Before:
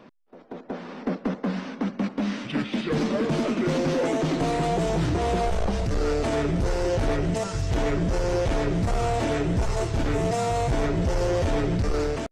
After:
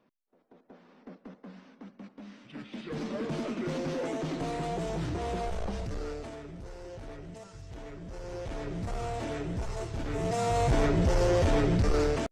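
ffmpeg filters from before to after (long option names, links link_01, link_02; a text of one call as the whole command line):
ffmpeg -i in.wav -af "volume=9.5dB,afade=type=in:start_time=2.41:duration=0.84:silence=0.281838,afade=type=out:start_time=5.78:duration=0.61:silence=0.298538,afade=type=in:start_time=8.01:duration=0.94:silence=0.334965,afade=type=in:start_time=10.07:duration=0.62:silence=0.354813" out.wav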